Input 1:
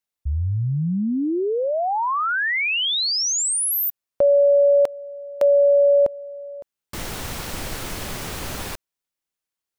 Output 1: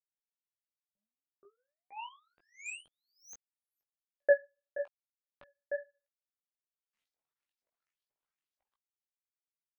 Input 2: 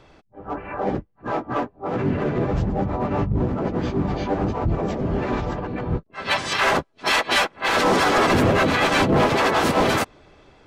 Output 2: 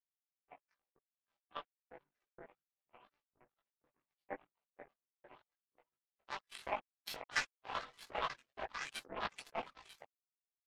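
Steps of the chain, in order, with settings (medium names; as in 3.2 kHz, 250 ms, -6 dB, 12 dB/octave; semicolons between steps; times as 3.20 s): reverb removal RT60 1.4 s; LFO band-pass saw up 2.1 Hz 540–5600 Hz; power-law waveshaper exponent 3; chorus voices 6, 0.9 Hz, delay 18 ms, depth 4.5 ms; trim +2.5 dB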